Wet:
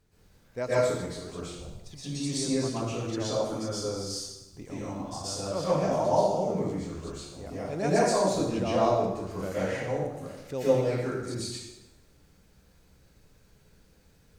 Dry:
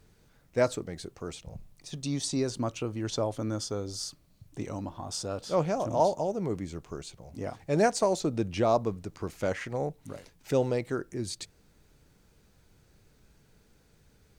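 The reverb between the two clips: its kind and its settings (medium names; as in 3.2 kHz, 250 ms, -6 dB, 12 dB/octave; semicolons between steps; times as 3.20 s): plate-style reverb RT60 0.97 s, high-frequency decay 0.85×, pre-delay 105 ms, DRR -10 dB; trim -8.5 dB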